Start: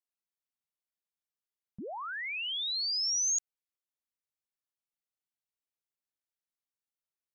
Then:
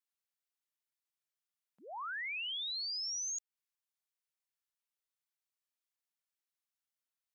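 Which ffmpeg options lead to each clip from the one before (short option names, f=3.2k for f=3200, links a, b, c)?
-af "highpass=910,acompressor=threshold=-38dB:ratio=6"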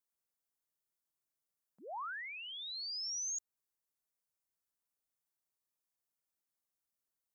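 -af "equalizer=f=2.8k:w=0.71:g=-10.5,volume=3.5dB"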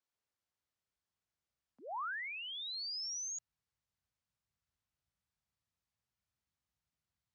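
-af "asubboost=boost=6.5:cutoff=120,lowpass=5.2k,afreqshift=46,volume=2.5dB"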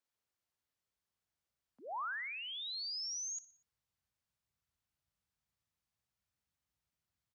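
-af "aecho=1:1:60|120|180|240:0.126|0.0655|0.034|0.0177"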